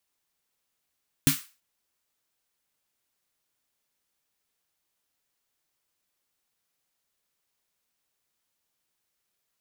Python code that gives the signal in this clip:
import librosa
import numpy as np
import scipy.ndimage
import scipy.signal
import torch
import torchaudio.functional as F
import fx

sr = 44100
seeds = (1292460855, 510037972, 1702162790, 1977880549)

y = fx.drum_snare(sr, seeds[0], length_s=0.33, hz=150.0, second_hz=270.0, noise_db=-3, noise_from_hz=1200.0, decay_s=0.14, noise_decay_s=0.33)